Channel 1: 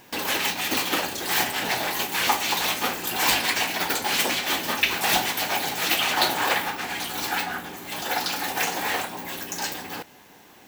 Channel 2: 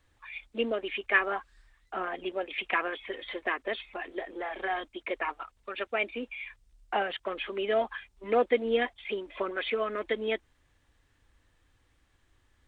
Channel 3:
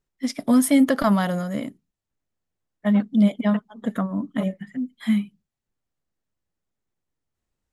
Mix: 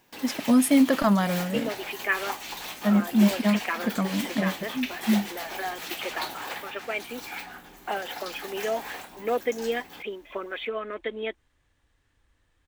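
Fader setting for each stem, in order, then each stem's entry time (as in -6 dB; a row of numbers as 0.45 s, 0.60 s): -12.5 dB, -1.5 dB, -2.0 dB; 0.00 s, 0.95 s, 0.00 s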